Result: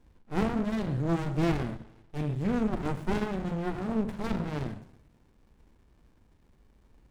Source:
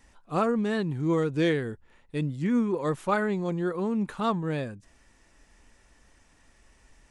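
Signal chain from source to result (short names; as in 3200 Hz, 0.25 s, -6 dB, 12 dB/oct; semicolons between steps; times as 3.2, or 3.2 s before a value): two-slope reverb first 0.68 s, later 1.9 s, from -23 dB, DRR 5.5 dB; running maximum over 65 samples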